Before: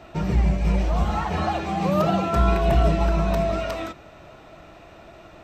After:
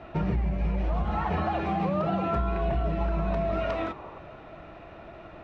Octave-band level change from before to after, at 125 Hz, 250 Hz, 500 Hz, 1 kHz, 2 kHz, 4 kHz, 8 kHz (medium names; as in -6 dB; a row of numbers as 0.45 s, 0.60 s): -6.0 dB, -5.0 dB, -5.5 dB, -4.5 dB, -5.5 dB, -10.0 dB, under -20 dB